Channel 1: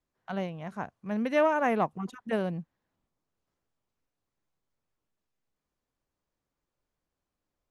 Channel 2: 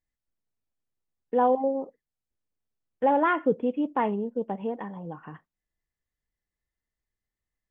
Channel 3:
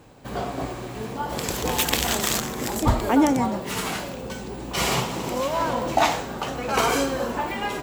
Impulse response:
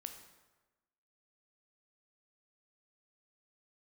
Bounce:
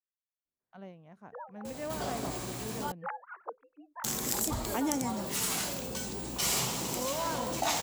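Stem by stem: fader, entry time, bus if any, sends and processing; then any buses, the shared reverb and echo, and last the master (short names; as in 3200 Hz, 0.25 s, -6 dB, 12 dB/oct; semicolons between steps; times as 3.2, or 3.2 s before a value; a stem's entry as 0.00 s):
-18.0 dB, 0.45 s, no send, low shelf 500 Hz +10.5 dB
-5.5 dB, 0.00 s, no send, sine-wave speech; band-pass 1400 Hz, Q 2.6; beating tremolo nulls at 2.3 Hz
-16.5 dB, 1.65 s, muted 2.92–4.04, no send, tone controls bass +9 dB, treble +13 dB; fast leveller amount 50%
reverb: off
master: low shelf 180 Hz -11.5 dB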